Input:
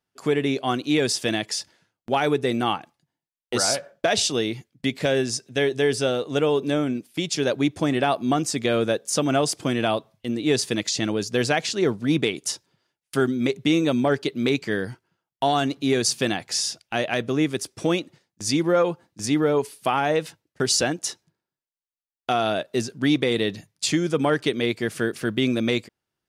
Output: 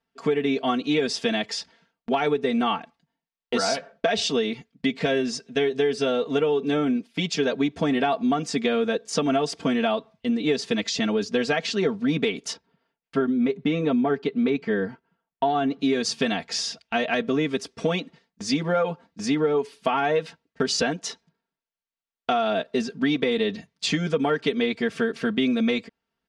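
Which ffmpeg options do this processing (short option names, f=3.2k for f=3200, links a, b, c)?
-filter_complex "[0:a]asettb=1/sr,asplit=3[a][b][c];[a]atrim=end=12.534[d];[b]atrim=start=12.53:end=15.79,asetpts=PTS-STARTPTS,afade=t=in:d=0.004:c=qsin,afade=t=out:st=3.256:d=0.004:c=qsin,lowpass=f=1.6k:p=1[e];[c]atrim=start=15.786[f];[d][e]acrossfade=d=0.004:c1=hsin:c2=qsin[g];[g][f]acrossfade=d=0.004:c1=qsin:c2=hsin,lowpass=4.2k,aecho=1:1:4.4:0.99,acompressor=threshold=-19dB:ratio=6"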